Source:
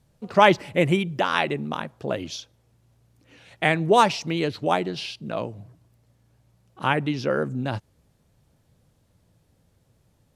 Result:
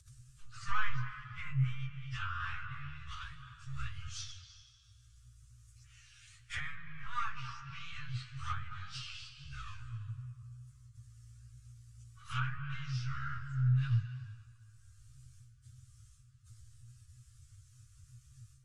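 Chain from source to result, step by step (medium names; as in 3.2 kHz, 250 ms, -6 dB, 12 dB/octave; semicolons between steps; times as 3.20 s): partial rectifier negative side -7 dB; gate with hold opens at -55 dBFS; Chebyshev band-stop 130–1200 Hz, order 5; treble shelf 3.1 kHz +11 dB; feedback comb 62 Hz, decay 0.24 s, harmonics all, mix 60%; reverberation RT60 0.85 s, pre-delay 103 ms, DRR 8.5 dB; low-pass that closes with the level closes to 1.6 kHz, closed at -28 dBFS; low-pass 8.5 kHz 24 dB/octave; upward compressor, threshold -49 dBFS; plain phase-vocoder stretch 1.8×; graphic EQ 125/250/500/1000/2000/4000 Hz +6/-8/+9/-4/-10/-9 dB; trim +4.5 dB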